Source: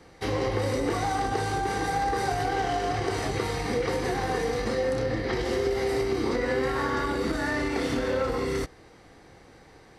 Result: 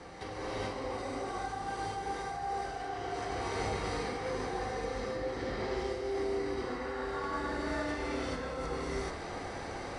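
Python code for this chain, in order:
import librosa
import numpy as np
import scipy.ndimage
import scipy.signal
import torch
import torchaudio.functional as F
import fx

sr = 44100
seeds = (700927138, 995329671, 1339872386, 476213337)

y = fx.peak_eq(x, sr, hz=880.0, db=5.5, octaves=1.8)
y = fx.over_compress(y, sr, threshold_db=-35.0, ratio=-1.0)
y = scipy.signal.sosfilt(scipy.signal.ellip(4, 1.0, 40, 10000.0, 'lowpass', fs=sr, output='sos'), y)
y = fx.rev_gated(y, sr, seeds[0], gate_ms=460, shape='rising', drr_db=-8.0)
y = F.gain(torch.from_numpy(y), -8.5).numpy()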